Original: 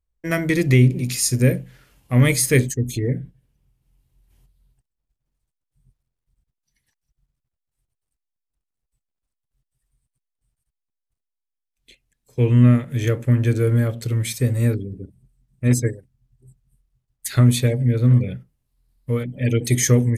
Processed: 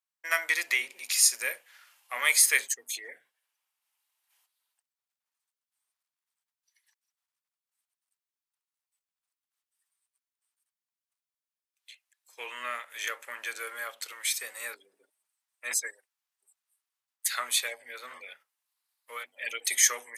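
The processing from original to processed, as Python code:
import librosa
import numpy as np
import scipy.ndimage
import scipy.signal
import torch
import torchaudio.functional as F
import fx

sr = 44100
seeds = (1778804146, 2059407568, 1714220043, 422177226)

y = scipy.signal.sosfilt(scipy.signal.butter(4, 900.0, 'highpass', fs=sr, output='sos'), x)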